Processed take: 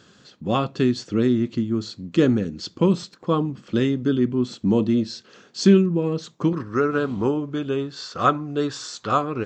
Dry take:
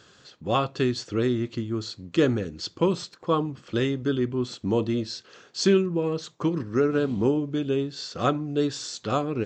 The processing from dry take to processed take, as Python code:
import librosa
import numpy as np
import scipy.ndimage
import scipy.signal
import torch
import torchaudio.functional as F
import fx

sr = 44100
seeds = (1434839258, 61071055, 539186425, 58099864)

y = fx.peak_eq(x, sr, hz=fx.steps((0.0, 210.0), (6.53, 1200.0)), db=9.5, octaves=0.97)